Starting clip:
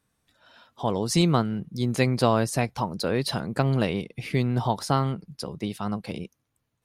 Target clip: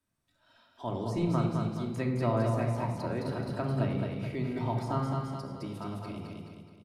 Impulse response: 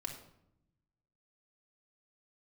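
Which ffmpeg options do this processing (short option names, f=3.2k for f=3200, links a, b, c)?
-filter_complex "[0:a]aecho=1:1:212|424|636|848|1060|1272:0.596|0.274|0.126|0.058|0.0267|0.0123[a];[1:a]atrim=start_sample=2205[b];[a][b]afir=irnorm=-1:irlink=0,acrossover=split=150|670|2000[c][d][e][f];[f]acompressor=threshold=-46dB:ratio=5[g];[c][d][e][g]amix=inputs=4:normalize=0,volume=-7.5dB"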